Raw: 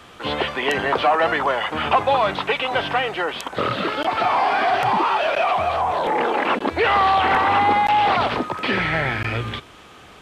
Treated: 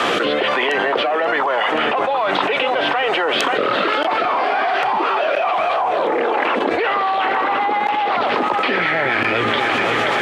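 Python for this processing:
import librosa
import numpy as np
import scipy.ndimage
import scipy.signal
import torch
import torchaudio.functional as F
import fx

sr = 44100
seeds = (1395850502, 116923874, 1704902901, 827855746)

y = fx.lowpass(x, sr, hz=2700.0, slope=6)
y = fx.rotary_switch(y, sr, hz=1.2, then_hz=8.0, switch_at_s=6.46)
y = scipy.signal.sosfilt(scipy.signal.butter(2, 350.0, 'highpass', fs=sr, output='sos'), y)
y = fx.echo_feedback(y, sr, ms=531, feedback_pct=50, wet_db=-16.5)
y = fx.env_flatten(y, sr, amount_pct=100)
y = F.gain(torch.from_numpy(y), -1.0).numpy()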